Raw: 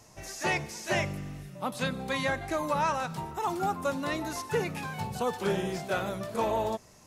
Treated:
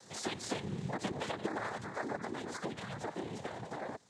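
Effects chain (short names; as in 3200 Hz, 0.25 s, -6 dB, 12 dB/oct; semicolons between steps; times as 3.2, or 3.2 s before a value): Doppler pass-by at 1.83, 6 m/s, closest 4 m; dynamic EQ 290 Hz, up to +6 dB, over -50 dBFS, Q 1.3; compressor 5:1, threshold -46 dBFS, peak gain reduction 19 dB; granular stretch 0.58×, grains 58 ms; noise vocoder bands 6; gain +10.5 dB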